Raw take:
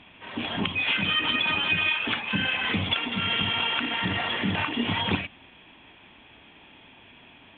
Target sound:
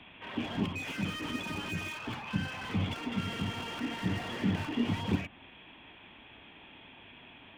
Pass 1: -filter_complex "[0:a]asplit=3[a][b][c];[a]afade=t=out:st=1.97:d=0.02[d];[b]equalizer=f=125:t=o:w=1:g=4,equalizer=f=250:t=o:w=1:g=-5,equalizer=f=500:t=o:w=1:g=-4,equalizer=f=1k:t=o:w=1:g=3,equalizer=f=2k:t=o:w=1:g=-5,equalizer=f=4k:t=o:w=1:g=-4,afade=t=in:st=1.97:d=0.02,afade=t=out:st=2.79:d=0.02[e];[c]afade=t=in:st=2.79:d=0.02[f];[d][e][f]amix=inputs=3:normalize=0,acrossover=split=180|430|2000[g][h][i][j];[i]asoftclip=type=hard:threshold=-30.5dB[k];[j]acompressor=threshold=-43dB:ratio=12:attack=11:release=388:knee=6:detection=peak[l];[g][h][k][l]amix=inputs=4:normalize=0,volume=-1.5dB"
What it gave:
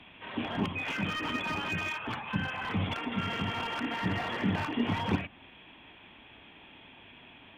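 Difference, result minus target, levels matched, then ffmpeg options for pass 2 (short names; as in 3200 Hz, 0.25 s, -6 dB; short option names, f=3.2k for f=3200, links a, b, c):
hard clip: distortion -8 dB
-filter_complex "[0:a]asplit=3[a][b][c];[a]afade=t=out:st=1.97:d=0.02[d];[b]equalizer=f=125:t=o:w=1:g=4,equalizer=f=250:t=o:w=1:g=-5,equalizer=f=500:t=o:w=1:g=-4,equalizer=f=1k:t=o:w=1:g=3,equalizer=f=2k:t=o:w=1:g=-5,equalizer=f=4k:t=o:w=1:g=-4,afade=t=in:st=1.97:d=0.02,afade=t=out:st=2.79:d=0.02[e];[c]afade=t=in:st=2.79:d=0.02[f];[d][e][f]amix=inputs=3:normalize=0,acrossover=split=180|430|2000[g][h][i][j];[i]asoftclip=type=hard:threshold=-41dB[k];[j]acompressor=threshold=-43dB:ratio=12:attack=11:release=388:knee=6:detection=peak[l];[g][h][k][l]amix=inputs=4:normalize=0,volume=-1.5dB"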